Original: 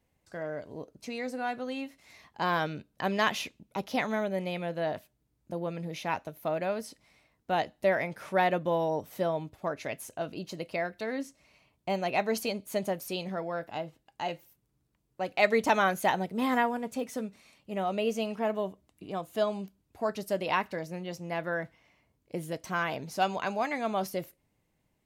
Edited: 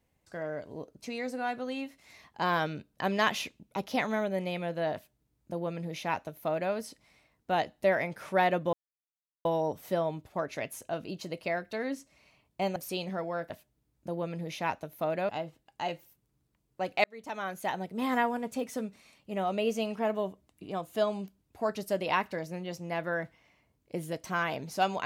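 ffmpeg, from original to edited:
-filter_complex "[0:a]asplit=6[s0][s1][s2][s3][s4][s5];[s0]atrim=end=8.73,asetpts=PTS-STARTPTS,afade=t=out:st=8.726:d=0.004:c=hsin,apad=pad_dur=0.72[s6];[s1]atrim=start=8.73:end=12.042,asetpts=PTS-STARTPTS,afade=t=in:d=0.004:c=hsin[s7];[s2]atrim=start=12.948:end=13.692[s8];[s3]atrim=start=4.938:end=6.732[s9];[s4]atrim=start=13.688:end=15.44,asetpts=PTS-STARTPTS,afade=t=out:st=1.748:d=0.004:c=hsin[s10];[s5]atrim=start=15.44,asetpts=PTS-STARTPTS,afade=t=in:d=1.32[s11];[s6][s7]concat=n=2:v=0:a=1[s12];[s12][s8]acrossfade=d=0.004:c1=hsin:c2=hsin[s13];[s13][s9]acrossfade=d=0.004:c1=hsin:c2=hsin[s14];[s10][s11]concat=n=2:v=0:a=1[s15];[s14][s15]acrossfade=d=0.004:c1=hsin:c2=hsin"

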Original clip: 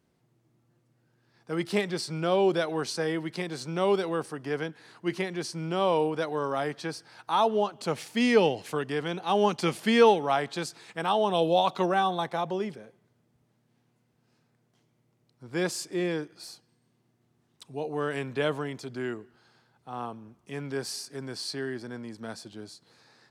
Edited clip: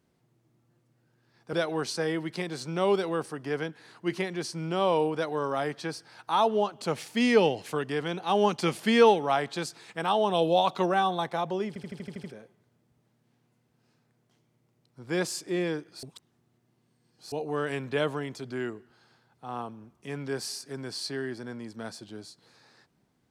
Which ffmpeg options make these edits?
-filter_complex "[0:a]asplit=11[s0][s1][s2][s3][s4][s5][s6][s7][s8][s9][s10];[s0]atrim=end=1.532[s11];[s1]atrim=start=2.528:end=12.762[s12];[s2]atrim=start=12.678:end=12.762[s13];[s3]atrim=start=12.678:end=12.762[s14];[s4]atrim=start=12.678:end=12.762[s15];[s5]atrim=start=12.678:end=12.762[s16];[s6]atrim=start=12.678:end=12.762[s17];[s7]atrim=start=12.678:end=12.762[s18];[s8]atrim=start=12.678:end=16.472[s19];[s9]atrim=start=16.468:end=17.762,asetpts=PTS-STARTPTS,areverse[s20];[s10]atrim=start=17.758[s21];[s11][s12]acrossfade=d=0.004:c1=hsin:c2=hsin[s22];[s22][s13]acrossfade=d=0.004:c1=hsin:c2=hsin[s23];[s23][s14]acrossfade=d=0.004:c1=hsin:c2=hsin[s24];[s24][s15]acrossfade=d=0.004:c1=hsin:c2=hsin[s25];[s25][s16]acrossfade=d=0.004:c1=hsin:c2=hsin[s26];[s26][s17]acrossfade=d=0.004:c1=hsin:c2=hsin[s27];[s27][s18]acrossfade=d=0.004:c1=hsin:c2=hsin[s28];[s28][s19]acrossfade=d=0.004:c1=hsin:c2=hsin[s29];[s29][s20]acrossfade=d=0.004:c1=hsin:c2=hsin[s30];[s30][s21]acrossfade=d=0.004:c1=hsin:c2=hsin"

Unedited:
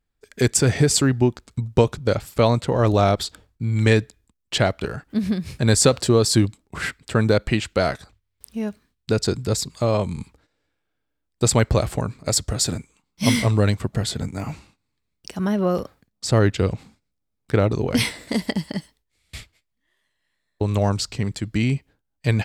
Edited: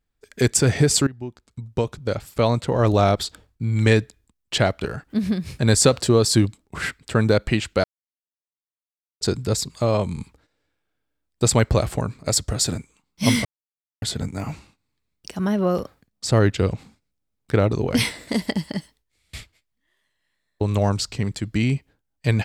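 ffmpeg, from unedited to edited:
-filter_complex "[0:a]asplit=6[s0][s1][s2][s3][s4][s5];[s0]atrim=end=1.07,asetpts=PTS-STARTPTS,afade=t=out:st=1.066:d=0.004:c=hsin:silence=0.1[s6];[s1]atrim=start=1.07:end=7.84,asetpts=PTS-STARTPTS,afade=t=in:d=1.79:silence=0.1,afade=t=out:st=6.766:d=0.004:c=hsin[s7];[s2]atrim=start=7.84:end=9.21,asetpts=PTS-STARTPTS,volume=0[s8];[s3]atrim=start=9.21:end=13.45,asetpts=PTS-STARTPTS,afade=t=in:d=0.004:c=hsin,afade=t=out:st=4.236:d=0.004:c=hsin[s9];[s4]atrim=start=13.45:end=14.02,asetpts=PTS-STARTPTS,volume=0[s10];[s5]atrim=start=14.02,asetpts=PTS-STARTPTS,afade=t=in:d=0.004:c=hsin[s11];[s6][s7][s8][s9][s10][s11]concat=n=6:v=0:a=1"

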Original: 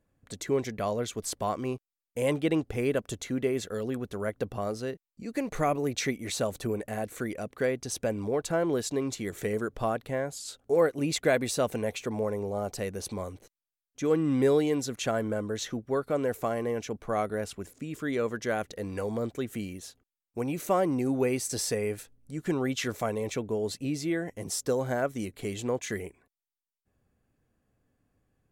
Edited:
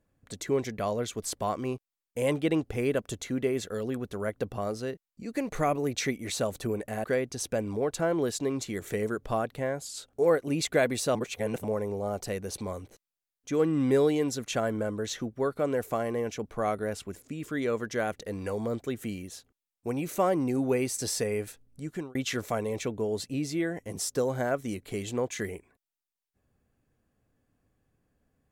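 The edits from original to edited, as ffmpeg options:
-filter_complex "[0:a]asplit=5[s0][s1][s2][s3][s4];[s0]atrim=end=7.042[s5];[s1]atrim=start=7.548:end=11.662[s6];[s2]atrim=start=11.658:end=12.152,asetpts=PTS-STARTPTS,areverse[s7];[s3]atrim=start=12.148:end=22.66,asetpts=PTS-STARTPTS,afade=t=out:st=10.182:d=0.33[s8];[s4]atrim=start=22.66,asetpts=PTS-STARTPTS,afade=t=in:d=0.004:c=hsin[s9];[s5][s6]acrossfade=d=0.004:c1=hsin:c2=hsin[s10];[s10][s7]acrossfade=d=0.004:c1=hsin:c2=hsin[s11];[s8][s9]concat=n=2:v=0:a=1[s12];[s11][s12]acrossfade=d=0.004:c1=hsin:c2=hsin"

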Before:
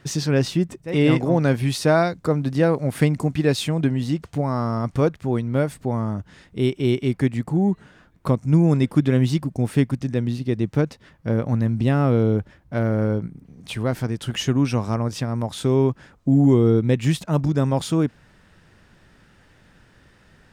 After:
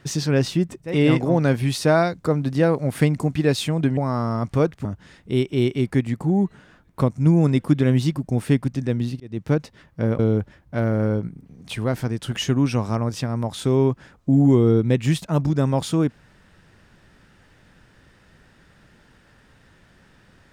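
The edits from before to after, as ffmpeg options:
-filter_complex "[0:a]asplit=5[s0][s1][s2][s3][s4];[s0]atrim=end=3.972[s5];[s1]atrim=start=4.388:end=5.272[s6];[s2]atrim=start=6.118:end=10.47,asetpts=PTS-STARTPTS,afade=t=out:st=4.348:d=0.004:c=hsin[s7];[s3]atrim=start=10.47:end=11.462,asetpts=PTS-STARTPTS,afade=t=in:d=0.32[s8];[s4]atrim=start=12.178[s9];[s5][s6]acrossfade=d=0.004:c1=hsin:c2=hsin[s10];[s7][s8]concat=n=2:v=0:a=1[s11];[s10][s11]acrossfade=d=0.004:c1=hsin:c2=hsin[s12];[s12][s9]acrossfade=d=0.004:c1=hsin:c2=hsin"

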